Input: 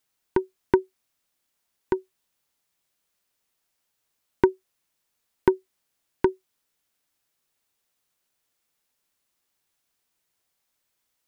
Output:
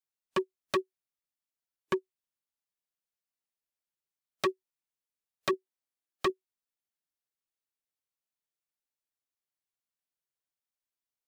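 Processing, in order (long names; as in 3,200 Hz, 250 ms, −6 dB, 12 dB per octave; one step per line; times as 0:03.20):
noise reduction from a noise print of the clip's start 19 dB
0:05.53–0:06.30: low shelf with overshoot 180 Hz −10.5 dB, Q 1.5
wave folding −20.5 dBFS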